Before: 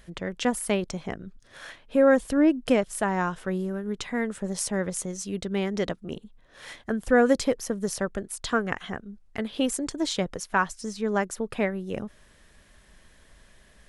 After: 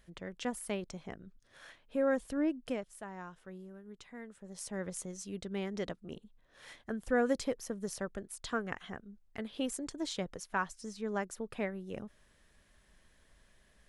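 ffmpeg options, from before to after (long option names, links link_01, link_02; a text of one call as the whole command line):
ffmpeg -i in.wav -af "volume=-2dB,afade=type=out:start_time=2.44:duration=0.54:silence=0.398107,afade=type=in:start_time=4.45:duration=0.42:silence=0.334965" out.wav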